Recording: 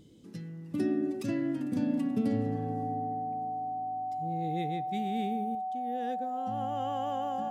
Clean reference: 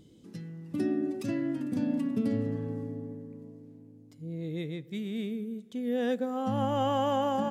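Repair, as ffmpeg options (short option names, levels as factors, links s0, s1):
-af "bandreject=f=750:w=30,asetnsamples=n=441:p=0,asendcmd='5.55 volume volume 9dB',volume=1"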